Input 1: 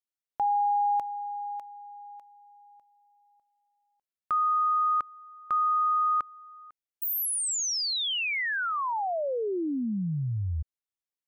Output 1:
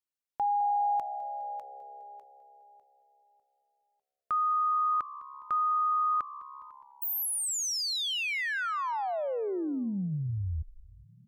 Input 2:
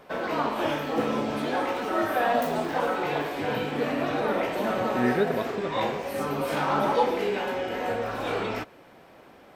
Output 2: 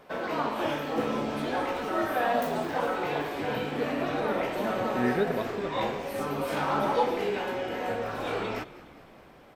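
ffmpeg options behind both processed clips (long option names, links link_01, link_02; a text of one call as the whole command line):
ffmpeg -i in.wav -filter_complex "[0:a]asplit=7[link_01][link_02][link_03][link_04][link_05][link_06][link_07];[link_02]adelay=206,afreqshift=-68,volume=-18dB[link_08];[link_03]adelay=412,afreqshift=-136,volume=-22.3dB[link_09];[link_04]adelay=618,afreqshift=-204,volume=-26.6dB[link_10];[link_05]adelay=824,afreqshift=-272,volume=-30.9dB[link_11];[link_06]adelay=1030,afreqshift=-340,volume=-35.2dB[link_12];[link_07]adelay=1236,afreqshift=-408,volume=-39.5dB[link_13];[link_01][link_08][link_09][link_10][link_11][link_12][link_13]amix=inputs=7:normalize=0,volume=-2.5dB" out.wav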